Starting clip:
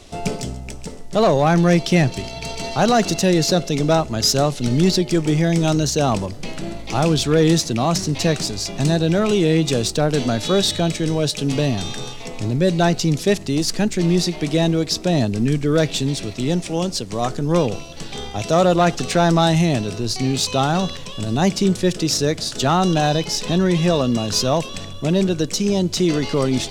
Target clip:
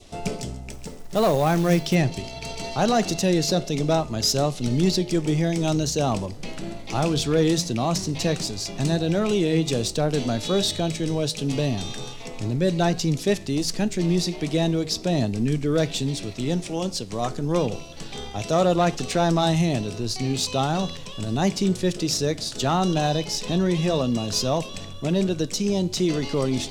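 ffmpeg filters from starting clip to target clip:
-filter_complex "[0:a]adynamicequalizer=threshold=0.01:dfrequency=1500:dqfactor=1.9:tfrequency=1500:tqfactor=1.9:attack=5:release=100:ratio=0.375:range=2:mode=cutabove:tftype=bell,flanger=delay=8.5:depth=1.4:regen=-87:speed=1.3:shape=sinusoidal,asplit=3[a][b][c];[a]afade=t=out:st=0.69:d=0.02[d];[b]acrusher=bits=5:mode=log:mix=0:aa=0.000001,afade=t=in:st=0.69:d=0.02,afade=t=out:st=1.94:d=0.02[e];[c]afade=t=in:st=1.94:d=0.02[f];[d][e][f]amix=inputs=3:normalize=0"

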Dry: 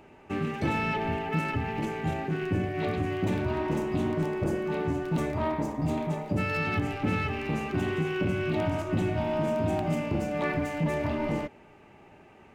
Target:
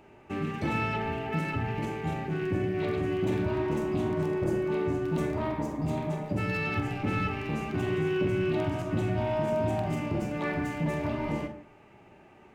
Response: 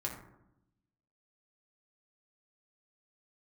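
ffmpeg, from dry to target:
-filter_complex "[0:a]asplit=2[a][b];[1:a]atrim=start_sample=2205,atrim=end_sample=6174,adelay=45[c];[b][c]afir=irnorm=-1:irlink=0,volume=-8dB[d];[a][d]amix=inputs=2:normalize=0,volume=-2.5dB"

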